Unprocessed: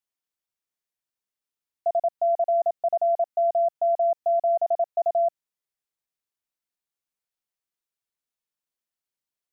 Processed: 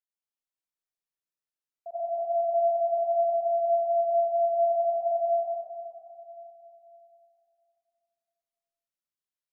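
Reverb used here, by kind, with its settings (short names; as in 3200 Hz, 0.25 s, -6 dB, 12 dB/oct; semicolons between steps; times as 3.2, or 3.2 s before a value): digital reverb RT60 3 s, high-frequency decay 0.95×, pre-delay 50 ms, DRR -9.5 dB; gain -16.5 dB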